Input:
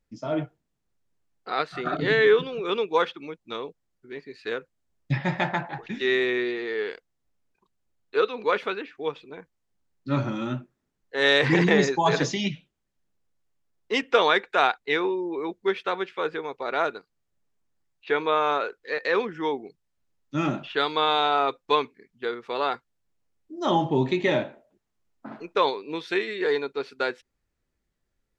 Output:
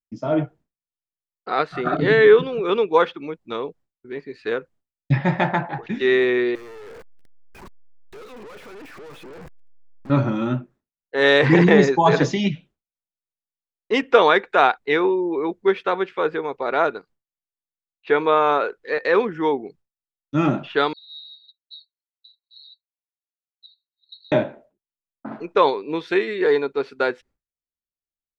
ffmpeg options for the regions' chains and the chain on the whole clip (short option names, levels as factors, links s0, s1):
-filter_complex "[0:a]asettb=1/sr,asplit=3[s0][s1][s2];[s0]atrim=end=6.554[s3];[s1]atrim=start=6.55:end=10.1,asetpts=PTS-STARTPTS,afade=t=in:d=0.004:c=qsin,afade=t=out:st=3.546:d=0.004:c=qsin,aeval=exprs='val(0)+0.5*0.0211*sgn(val(0))':c=same,acrossover=split=1100|3600[s4][s5][s6];[s4]acompressor=threshold=0.0282:ratio=4[s7];[s5]acompressor=threshold=0.0158:ratio=4[s8];[s6]acompressor=threshold=0.00501:ratio=4[s9];[s7][s8][s9]amix=inputs=3:normalize=0,aeval=exprs='(tanh(178*val(0)+0.45)-tanh(0.45))/178':c=same[s10];[s2]atrim=start=10.096[s11];[s3][s10]acrossfade=d=0.004:c1=hsin:c2=qsin[s12];[s12][s11]acrossfade=d=0.004:c1=qsin:c2=hsin,asettb=1/sr,asplit=3[s13][s14][s15];[s13]atrim=end=20.934[s16];[s14]atrim=start=20.93:end=24.32,asetpts=PTS-STARTPTS,afade=t=in:d=0.004:c=qsin,afade=t=out:st=3.386:d=0.004:c=qsin,asuperpass=centerf=4100:order=20:qfactor=6,aecho=1:1:4.3:0.51,atrim=end_sample=149499[s17];[s15]atrim=start=24.316[s18];[s16][s17]acrossfade=d=0.004:c1=hsin:c2=qsin[s19];[s19][s18]acrossfade=d=0.004:c1=qsin:c2=hsin,agate=range=0.0224:threshold=0.00282:ratio=3:detection=peak,highshelf=f=2400:g=-10,volume=2.24"